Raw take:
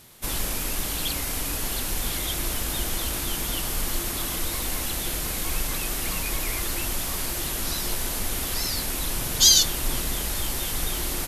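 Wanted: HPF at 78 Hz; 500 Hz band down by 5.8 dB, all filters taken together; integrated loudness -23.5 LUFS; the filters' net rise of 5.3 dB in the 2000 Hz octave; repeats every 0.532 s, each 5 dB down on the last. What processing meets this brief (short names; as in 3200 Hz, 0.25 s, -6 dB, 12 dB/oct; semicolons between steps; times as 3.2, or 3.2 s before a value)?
HPF 78 Hz; bell 500 Hz -8.5 dB; bell 2000 Hz +7 dB; feedback echo 0.532 s, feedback 56%, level -5 dB; gain -0.5 dB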